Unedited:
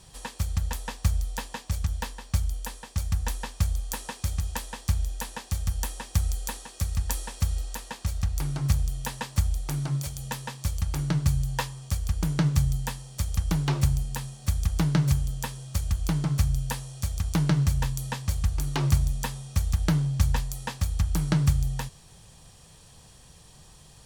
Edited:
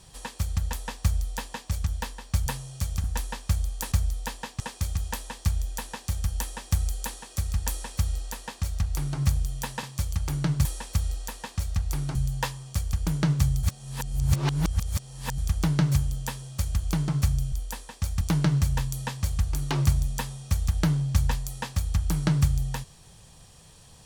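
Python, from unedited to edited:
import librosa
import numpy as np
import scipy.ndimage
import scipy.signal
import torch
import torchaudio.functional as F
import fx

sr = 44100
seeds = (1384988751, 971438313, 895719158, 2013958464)

y = fx.edit(x, sr, fx.duplicate(start_s=1.03, length_s=0.68, to_s=4.03),
    fx.swap(start_s=2.46, length_s=0.69, other_s=16.68, other_length_s=0.58),
    fx.duplicate(start_s=7.12, length_s=1.5, to_s=11.31),
    fx.cut(start_s=9.26, length_s=1.23),
    fx.reverse_span(start_s=12.79, length_s=1.75), tone=tone)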